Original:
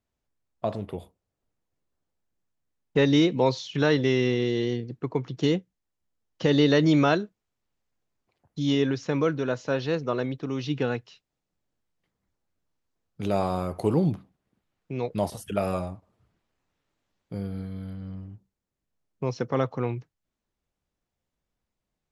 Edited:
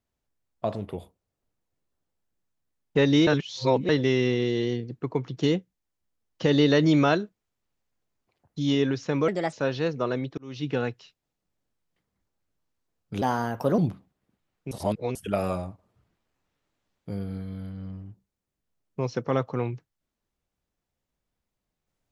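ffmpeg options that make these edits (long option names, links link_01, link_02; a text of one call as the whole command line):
ffmpeg -i in.wav -filter_complex "[0:a]asplit=10[link_01][link_02][link_03][link_04][link_05][link_06][link_07][link_08][link_09][link_10];[link_01]atrim=end=3.272[link_11];[link_02]atrim=start=3.268:end=3.892,asetpts=PTS-STARTPTS,areverse[link_12];[link_03]atrim=start=3.888:end=9.284[link_13];[link_04]atrim=start=9.28:end=9.6,asetpts=PTS-STARTPTS,asetrate=57330,aresample=44100,atrim=end_sample=10855,asetpts=PTS-STARTPTS[link_14];[link_05]atrim=start=9.596:end=10.45,asetpts=PTS-STARTPTS,afade=type=out:start_time=0.85:duration=0.004:curve=hsin[link_15];[link_06]atrim=start=10.45:end=13.294,asetpts=PTS-STARTPTS,afade=type=in:duration=0.48:curve=qsin[link_16];[link_07]atrim=start=13.29:end=14.02,asetpts=PTS-STARTPTS,asetrate=56889,aresample=44100[link_17];[link_08]atrim=start=14.016:end=14.952[link_18];[link_09]atrim=start=14.948:end=15.392,asetpts=PTS-STARTPTS,areverse[link_19];[link_10]atrim=start=15.388[link_20];[link_11][link_12]acrossfade=duration=0.004:curve1=hsin:curve2=hsin[link_21];[link_21][link_13]acrossfade=duration=0.004:curve1=hsin:curve2=hsin[link_22];[link_22][link_14]acrossfade=duration=0.004:curve1=hsin:curve2=hsin[link_23];[link_15][link_16]concat=n=2:v=0:a=1[link_24];[link_23][link_24]acrossfade=duration=0.004:curve1=hsin:curve2=hsin[link_25];[link_25][link_17]acrossfade=duration=0.004:curve1=hsin:curve2=hsin[link_26];[link_26][link_18]acrossfade=duration=0.004:curve1=hsin:curve2=hsin[link_27];[link_27][link_19]acrossfade=duration=0.004:curve1=hsin:curve2=hsin[link_28];[link_28][link_20]acrossfade=duration=0.004:curve1=hsin:curve2=hsin" out.wav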